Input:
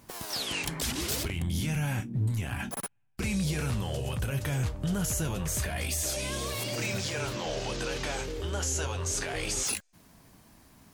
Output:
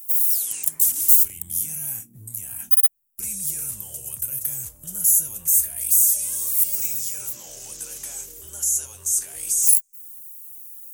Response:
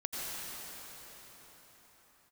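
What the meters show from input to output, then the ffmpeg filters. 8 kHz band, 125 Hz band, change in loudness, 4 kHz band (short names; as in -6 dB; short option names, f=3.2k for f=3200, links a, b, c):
+13.5 dB, -16.0 dB, +13.0 dB, -6.5 dB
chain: -af "aemphasis=mode=production:type=75fm,aeval=exprs='0.335*(abs(mod(val(0)/0.335+3,4)-2)-1)':c=same,aexciter=amount=11:drive=1.3:freq=6.3k,volume=-15dB"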